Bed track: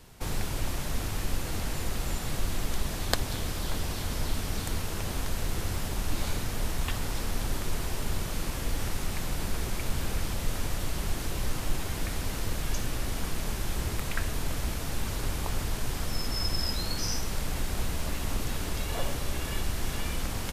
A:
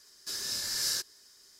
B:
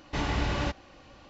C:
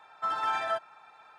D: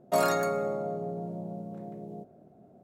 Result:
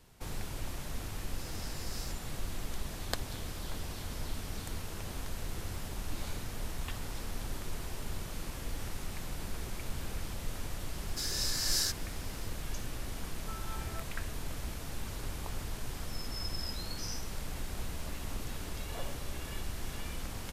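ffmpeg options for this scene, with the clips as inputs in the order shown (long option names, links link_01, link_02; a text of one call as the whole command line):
ffmpeg -i bed.wav -i cue0.wav -i cue1.wav -i cue2.wav -filter_complex "[1:a]asplit=2[link_01][link_02];[0:a]volume=-8dB[link_03];[link_01]atrim=end=1.59,asetpts=PTS-STARTPTS,volume=-16dB,afade=type=in:duration=0.004:curve=hsin,afade=type=out:start_time=1.586:duration=0.004:curve=hsin,adelay=1110[link_04];[link_02]atrim=end=1.59,asetpts=PTS-STARTPTS,volume=-0.5dB,afade=type=in:duration=0.004:curve=hsin,afade=type=out:start_time=1.586:duration=0.004:curve=hsin,adelay=480690S[link_05];[3:a]atrim=end=1.38,asetpts=PTS-STARTPTS,volume=-18dB,afade=type=in:duration=0.004:curve=hsin,afade=type=out:start_time=1.376:duration=0.004:curve=hsin,adelay=13250[link_06];[link_03][link_04][link_05][link_06]amix=inputs=4:normalize=0" out.wav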